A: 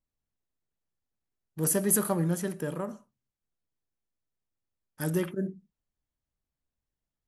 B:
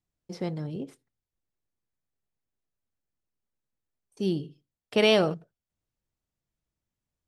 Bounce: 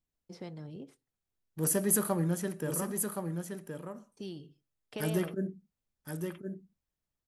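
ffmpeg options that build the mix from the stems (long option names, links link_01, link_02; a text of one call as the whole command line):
ffmpeg -i stem1.wav -i stem2.wav -filter_complex "[0:a]volume=-2.5dB,asplit=2[link_01][link_02];[link_02]volume=-6dB[link_03];[1:a]acrossover=split=700|1700[link_04][link_05][link_06];[link_04]acompressor=threshold=-32dB:ratio=4[link_07];[link_05]acompressor=threshold=-43dB:ratio=4[link_08];[link_06]acompressor=threshold=-41dB:ratio=4[link_09];[link_07][link_08][link_09]amix=inputs=3:normalize=0,volume=-8.5dB[link_10];[link_03]aecho=0:1:1070:1[link_11];[link_01][link_10][link_11]amix=inputs=3:normalize=0" out.wav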